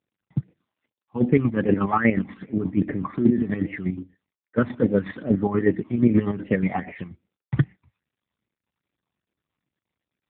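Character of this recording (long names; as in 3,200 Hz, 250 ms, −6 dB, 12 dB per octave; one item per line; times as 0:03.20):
phaser sweep stages 12, 2.5 Hz, lowest notch 460–1,200 Hz
chopped level 8.3 Hz, depth 60%, duty 40%
AMR narrowband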